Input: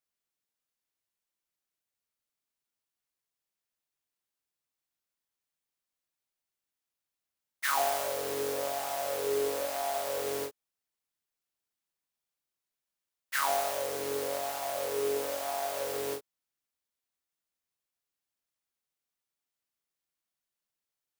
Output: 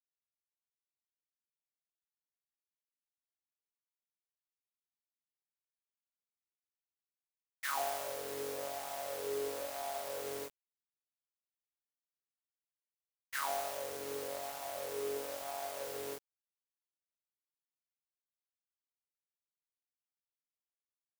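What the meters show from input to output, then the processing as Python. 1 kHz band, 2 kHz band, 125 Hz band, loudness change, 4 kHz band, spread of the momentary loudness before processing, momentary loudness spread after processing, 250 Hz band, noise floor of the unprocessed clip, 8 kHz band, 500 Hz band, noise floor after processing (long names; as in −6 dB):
−7.5 dB, −7.5 dB, −7.0 dB, −7.5 dB, −7.0 dB, 6 LU, 6 LU, −7.5 dB, below −85 dBFS, −7.0 dB, −8.0 dB, below −85 dBFS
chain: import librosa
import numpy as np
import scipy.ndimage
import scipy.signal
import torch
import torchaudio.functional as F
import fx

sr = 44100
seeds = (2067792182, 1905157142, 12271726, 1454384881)

y = np.where(np.abs(x) >= 10.0 ** (-38.5 / 20.0), x, 0.0)
y = y * librosa.db_to_amplitude(-7.5)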